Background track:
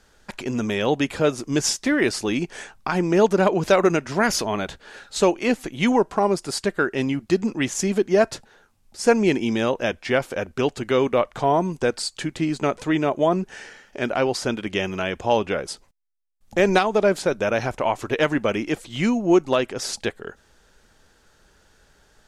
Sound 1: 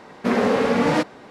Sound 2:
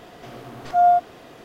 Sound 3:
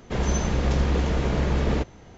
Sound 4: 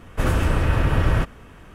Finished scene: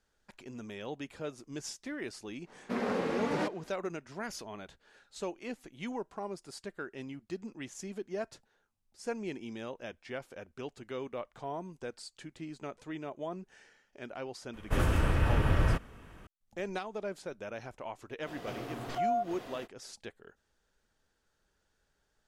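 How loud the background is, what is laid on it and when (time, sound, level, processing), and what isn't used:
background track −19.5 dB
0:02.45: mix in 1 −13.5 dB, fades 0.05 s
0:14.53: mix in 4 −7.5 dB
0:18.24: mix in 2 −2 dB, fades 0.05 s + downward compressor 2.5 to 1, threshold −33 dBFS
not used: 3

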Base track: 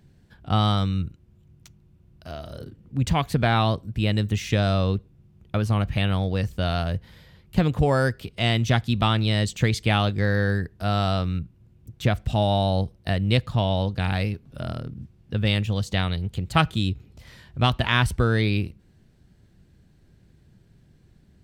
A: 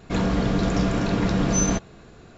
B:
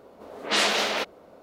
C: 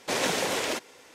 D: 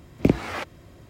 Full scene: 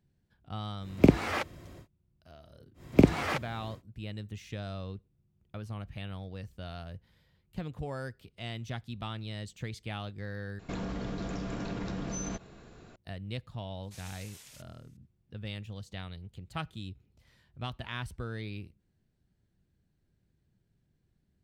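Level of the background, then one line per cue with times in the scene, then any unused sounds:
base track −17.5 dB
0:00.79: mix in D −0.5 dB, fades 0.10 s
0:02.74: mix in D −0.5 dB, fades 0.10 s
0:10.59: overwrite with A −5.5 dB + downward compressor, threshold −27 dBFS
0:13.83: mix in C −17 dB + first difference
not used: B

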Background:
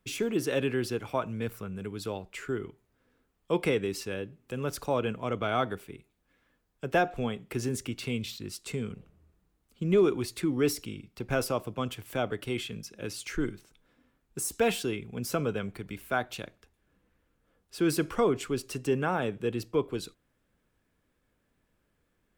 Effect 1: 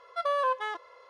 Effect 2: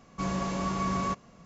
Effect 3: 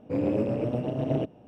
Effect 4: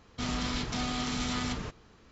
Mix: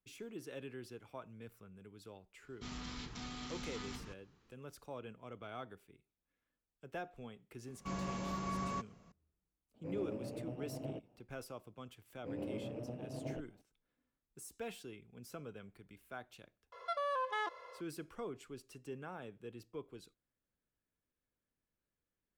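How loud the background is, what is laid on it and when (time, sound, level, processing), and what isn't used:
background −18.5 dB
0:02.43: mix in 4 −13 dB + parametric band 610 Hz −7 dB 0.43 octaves
0:07.67: mix in 2 −9.5 dB
0:09.74: mix in 3 −16.5 dB + notch filter 3,400 Hz
0:12.15: mix in 3 −16 dB
0:16.72: mix in 1 + brickwall limiter −29 dBFS

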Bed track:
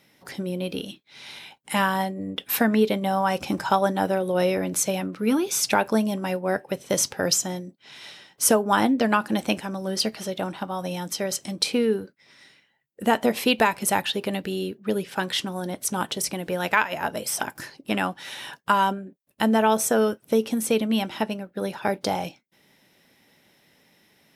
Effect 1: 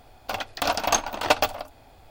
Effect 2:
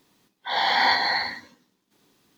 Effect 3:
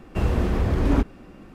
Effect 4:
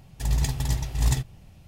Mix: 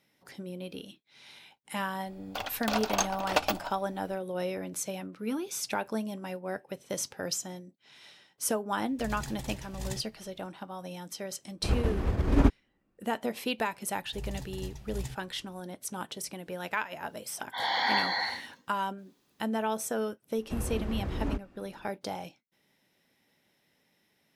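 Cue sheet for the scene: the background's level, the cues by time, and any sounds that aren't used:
bed track −11 dB
0:02.06: mix in 1 −6.5 dB
0:08.79: mix in 4 −10 dB + parametric band 68 Hz −7.5 dB 2 octaves
0:11.47: mix in 3 + expander for the loud parts 2.5 to 1, over −36 dBFS
0:13.93: mix in 4 −15 dB
0:17.07: mix in 2 −7 dB
0:20.35: mix in 3 −12.5 dB

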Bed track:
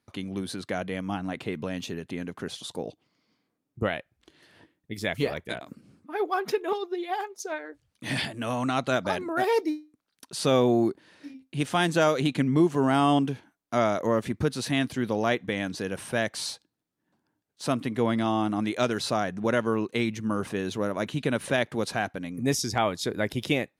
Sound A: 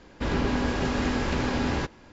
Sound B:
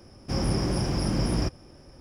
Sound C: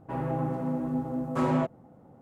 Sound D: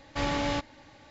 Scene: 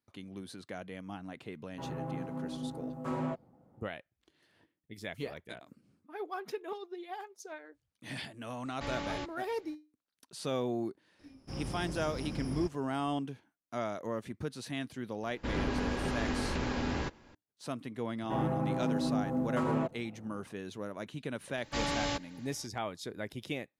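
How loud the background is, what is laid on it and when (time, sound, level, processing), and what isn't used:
bed track −12 dB
0:01.69: mix in C −9 dB
0:08.65: mix in D −9.5 dB
0:11.19: mix in B −14 dB
0:15.23: mix in A −7 dB
0:18.21: mix in C −0.5 dB + brickwall limiter −23 dBFS
0:21.57: mix in D −5 dB + high-shelf EQ 5,200 Hz +12 dB

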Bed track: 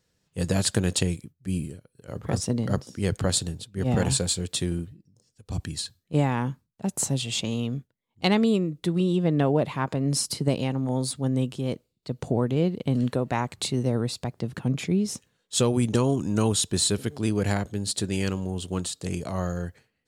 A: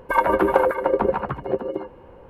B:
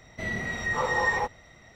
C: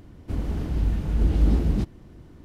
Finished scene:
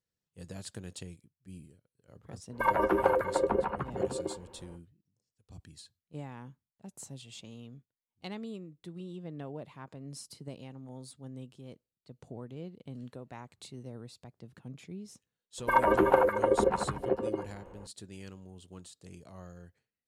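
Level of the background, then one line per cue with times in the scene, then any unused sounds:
bed track −19.5 dB
0:02.50: mix in A −8 dB, fades 0.05 s
0:15.58: mix in A −5.5 dB
not used: B, C

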